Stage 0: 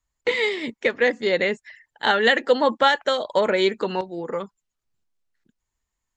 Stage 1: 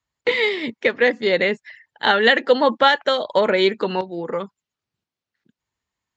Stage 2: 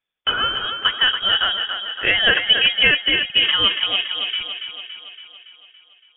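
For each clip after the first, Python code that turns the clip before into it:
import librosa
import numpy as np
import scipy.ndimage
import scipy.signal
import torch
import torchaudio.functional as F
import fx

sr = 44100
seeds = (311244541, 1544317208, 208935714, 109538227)

y1 = scipy.signal.sosfilt(scipy.signal.cheby1(2, 1.0, [110.0, 4500.0], 'bandpass', fs=sr, output='sos'), x)
y1 = y1 * librosa.db_to_amplitude(3.5)
y2 = fx.freq_invert(y1, sr, carrier_hz=3500)
y2 = fx.echo_thinned(y2, sr, ms=282, feedback_pct=59, hz=170.0, wet_db=-7)
y2 = y2 * librosa.db_to_amplitude(-1.0)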